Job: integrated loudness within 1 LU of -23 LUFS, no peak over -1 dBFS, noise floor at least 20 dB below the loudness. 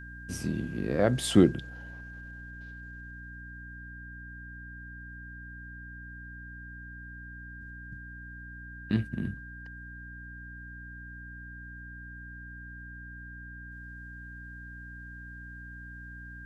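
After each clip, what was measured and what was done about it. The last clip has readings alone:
hum 60 Hz; highest harmonic 300 Hz; hum level -44 dBFS; steady tone 1.6 kHz; tone level -45 dBFS; loudness -36.0 LUFS; peak level -7.0 dBFS; loudness target -23.0 LUFS
-> de-hum 60 Hz, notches 5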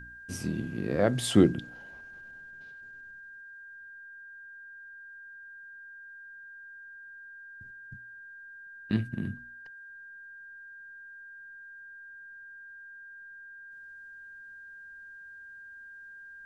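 hum not found; steady tone 1.6 kHz; tone level -45 dBFS
-> band-stop 1.6 kHz, Q 30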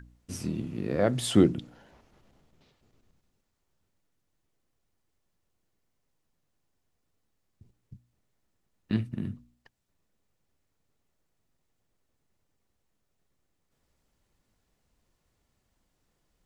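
steady tone not found; loudness -28.5 LUFS; peak level -8.0 dBFS; loudness target -23.0 LUFS
-> trim +5.5 dB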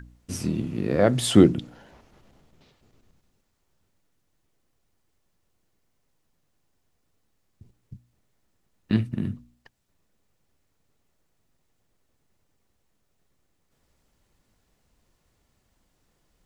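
loudness -23.0 LUFS; peak level -2.5 dBFS; noise floor -72 dBFS

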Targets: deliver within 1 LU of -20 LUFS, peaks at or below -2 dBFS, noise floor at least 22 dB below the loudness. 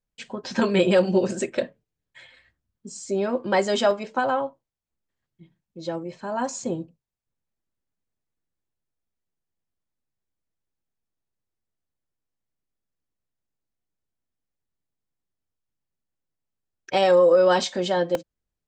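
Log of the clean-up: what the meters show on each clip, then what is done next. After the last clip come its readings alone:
dropouts 2; longest dropout 1.3 ms; loudness -23.0 LUFS; peak level -8.0 dBFS; loudness target -20.0 LUFS
-> interpolate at 3.91/18.15 s, 1.3 ms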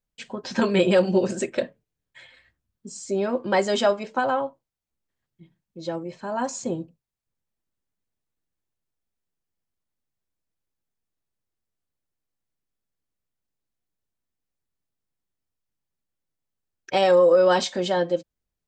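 dropouts 0; loudness -23.0 LUFS; peak level -8.0 dBFS; loudness target -20.0 LUFS
-> trim +3 dB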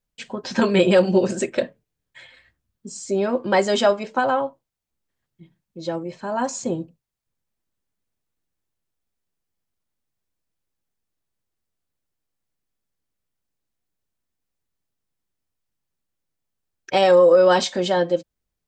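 loudness -20.0 LUFS; peak level -5.0 dBFS; noise floor -82 dBFS

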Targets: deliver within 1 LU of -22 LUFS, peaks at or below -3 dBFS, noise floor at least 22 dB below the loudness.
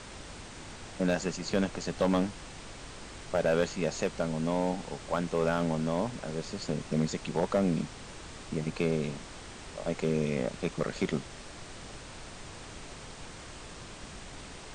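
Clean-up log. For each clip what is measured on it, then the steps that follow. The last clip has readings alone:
clipped samples 0.3%; clipping level -18.5 dBFS; noise floor -46 dBFS; noise floor target -54 dBFS; loudness -31.5 LUFS; peak level -18.5 dBFS; loudness target -22.0 LUFS
-> clip repair -18.5 dBFS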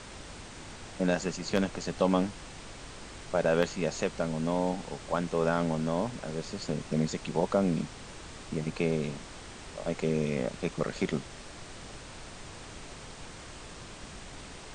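clipped samples 0.0%; noise floor -46 dBFS; noise floor target -53 dBFS
-> noise print and reduce 7 dB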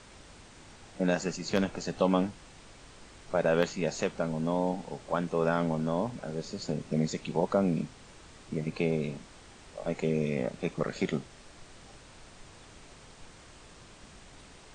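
noise floor -53 dBFS; loudness -31.0 LUFS; peak level -9.5 dBFS; loudness target -22.0 LUFS
-> trim +9 dB; peak limiter -3 dBFS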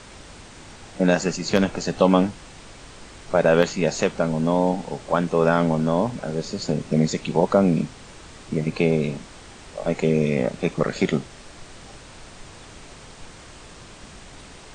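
loudness -22.0 LUFS; peak level -3.0 dBFS; noise floor -44 dBFS

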